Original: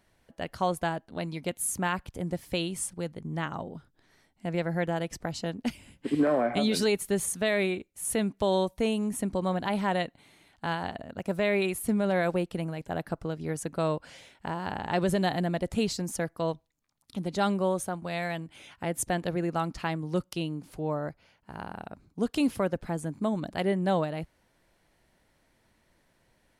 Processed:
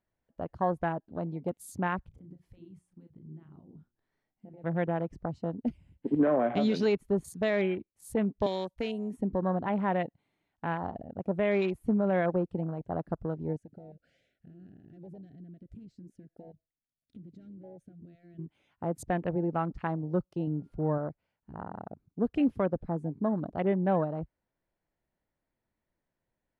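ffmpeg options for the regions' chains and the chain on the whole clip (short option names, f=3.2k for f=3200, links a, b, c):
-filter_complex "[0:a]asettb=1/sr,asplit=3[a][b][c];[a]atrim=end=2.084[d];[b]atrim=start=2.08:end=4.64,asetpts=PTS-STARTPTS,afade=t=in:d=0.004:c=qsin,afade=t=out:st=2.556:d=0.004:c=qsin,acompressor=threshold=-43dB:ratio=10:attack=3.2:release=140:knee=1:detection=peak,bandreject=f=60:t=h:w=6,bandreject=f=120:t=h:w=6,bandreject=f=180:t=h:w=6,bandreject=f=240:t=h:w=6,bandreject=f=300:t=h:w=6,bandreject=f=360:t=h:w=6,asplit=2[e][f];[f]adelay=33,volume=-8dB[g];[e][g]amix=inputs=2:normalize=0,atrim=end_sample=112896[h];[c]atrim=start=4.636[i];[d][h]acrossfade=d=0.004:c1=hsin:c2=qsin[j];[j][i]acrossfade=d=0.004:c1=qsin:c2=hsin,asettb=1/sr,asplit=3[k][l][m];[k]atrim=end=8.464[n];[l]atrim=start=8.46:end=9.17,asetpts=PTS-STARTPTS,afade=t=in:d=0.004:c=qsin,afade=t=out:st=0.706:d=0.004:c=qsin,highshelf=f=2.3k:g=10,acrossover=split=230|1800[o][p][q];[o]acompressor=threshold=-46dB:ratio=4[r];[p]acompressor=threshold=-31dB:ratio=4[s];[q]acompressor=threshold=-33dB:ratio=4[t];[r][s][t]amix=inputs=3:normalize=0,agate=range=-33dB:threshold=-52dB:ratio=3:release=100:detection=peak[u];[m]atrim=start=9.166[v];[n][u]acrossfade=d=0.004:c1=hsin:c2=qsin[w];[w][v]acrossfade=d=0.004:c1=qsin:c2=hsin,asettb=1/sr,asplit=3[x][y][z];[x]atrim=end=13.564[aa];[y]atrim=start=13.56:end=18.39,asetpts=PTS-STARTPTS,afade=t=in:d=0.004:c=qsin,afade=t=out:st=4.826:d=0.004:c=qsin,aeval=exprs='(tanh(15.8*val(0)+0.2)-tanh(0.2))/15.8':c=same,acompressor=threshold=-43dB:ratio=8:attack=3.2:release=140:knee=1:detection=peak,asuperstop=centerf=1000:order=8:qfactor=1.5[ab];[z]atrim=start=18.386[ac];[aa][ab]acrossfade=d=0.004:c1=hsin:c2=qsin[ad];[ad][ac]acrossfade=d=0.004:c1=qsin:c2=hsin,asettb=1/sr,asplit=3[ae][af][ag];[ae]atrim=end=20.474[ah];[af]atrim=start=20.47:end=20.98,asetpts=PTS-STARTPTS,afade=t=in:d=0.004:c=qsin,afade=t=out:st=0.506:d=0.004:c=qsin,aeval=exprs='val(0)+0.001*sin(2*PI*1400*n/s)':c=same,lowshelf=f=270:g=5.5[ai];[ag]atrim=start=20.976[aj];[ah][ai]acrossfade=d=0.004:c1=hsin:c2=qsin[ak];[ak][aj]acrossfade=d=0.004:c1=qsin:c2=hsin,afwtdn=0.0126,lowpass=f=1.5k:p=1"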